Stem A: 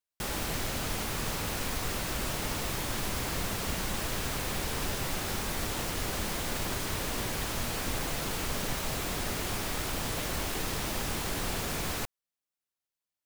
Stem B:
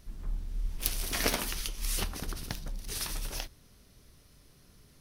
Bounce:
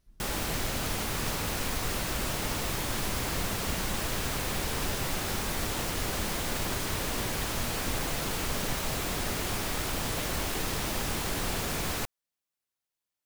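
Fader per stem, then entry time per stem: +1.5, -15.5 dB; 0.00, 0.00 s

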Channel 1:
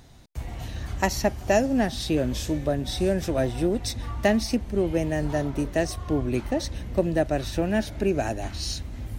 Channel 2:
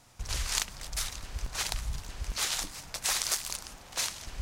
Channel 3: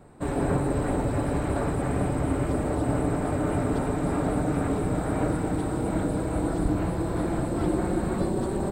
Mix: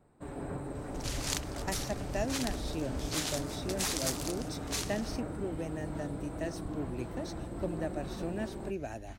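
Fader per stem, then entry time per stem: -13.5, -4.5, -14.0 dB; 0.65, 0.75, 0.00 s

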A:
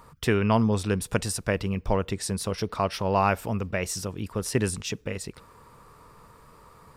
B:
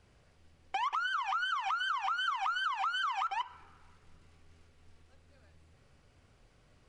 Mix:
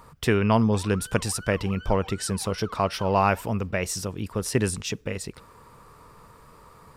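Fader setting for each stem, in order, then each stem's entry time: +1.5, -11.5 dB; 0.00, 0.00 s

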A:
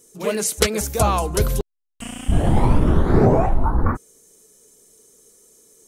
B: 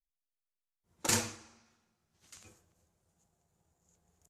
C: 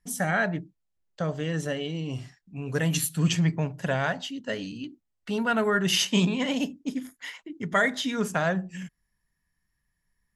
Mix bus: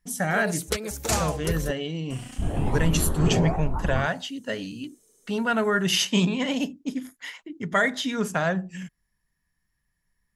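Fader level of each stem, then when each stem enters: -9.5, +2.0, +1.0 dB; 0.10, 0.00, 0.00 s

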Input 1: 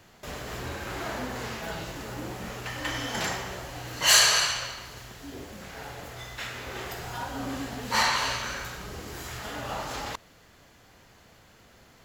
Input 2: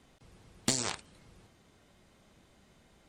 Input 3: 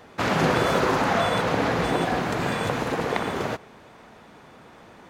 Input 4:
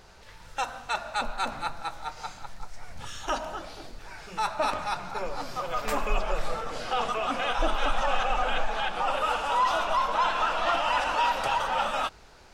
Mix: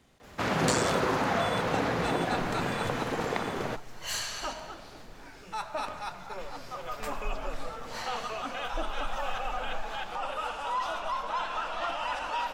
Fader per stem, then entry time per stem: -16.0, -1.0, -5.5, -7.0 dB; 0.00, 0.00, 0.20, 1.15 s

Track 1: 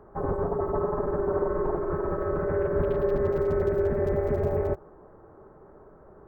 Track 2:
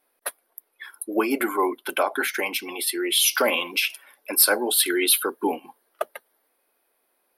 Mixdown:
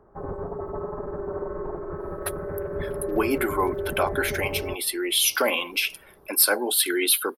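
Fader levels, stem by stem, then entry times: -5.0, -1.5 dB; 0.00, 2.00 s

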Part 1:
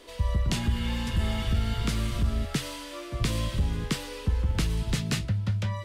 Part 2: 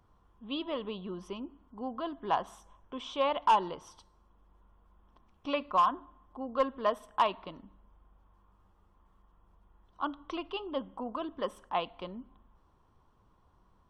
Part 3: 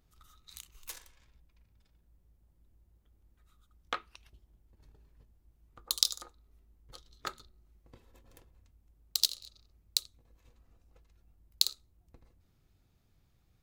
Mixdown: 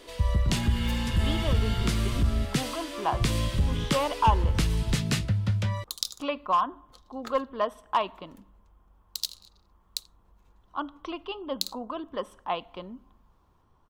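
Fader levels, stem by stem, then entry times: +1.5, +1.5, -4.0 dB; 0.00, 0.75, 0.00 s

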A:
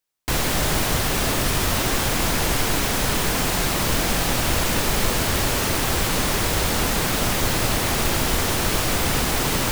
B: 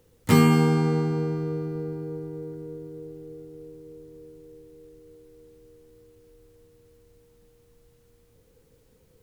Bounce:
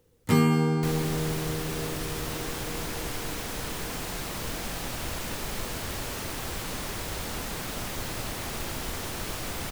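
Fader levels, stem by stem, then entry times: -12.5, -4.0 dB; 0.55, 0.00 s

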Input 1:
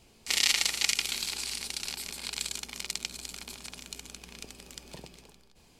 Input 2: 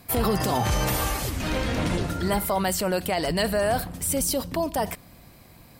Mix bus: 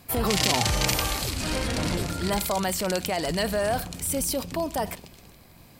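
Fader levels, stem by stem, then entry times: 0.0, -2.0 dB; 0.00, 0.00 s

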